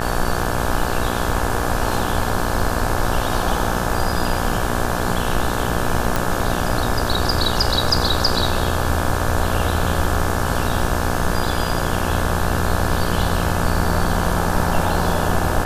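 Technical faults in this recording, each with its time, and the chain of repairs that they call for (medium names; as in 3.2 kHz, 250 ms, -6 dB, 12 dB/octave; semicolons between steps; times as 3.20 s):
buzz 60 Hz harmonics 29 -24 dBFS
6.16 s: pop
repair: de-click; de-hum 60 Hz, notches 29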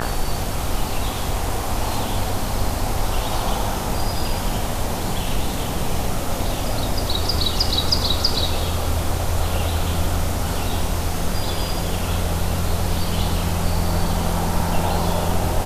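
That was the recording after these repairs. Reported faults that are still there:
nothing left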